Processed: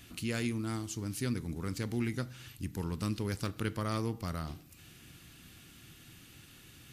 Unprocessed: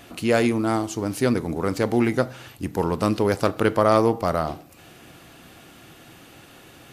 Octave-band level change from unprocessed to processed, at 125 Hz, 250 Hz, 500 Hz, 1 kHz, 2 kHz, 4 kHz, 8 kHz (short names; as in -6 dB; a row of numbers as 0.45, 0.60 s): -7.0, -13.0, -20.0, -19.0, -13.0, -8.5, -7.0 dB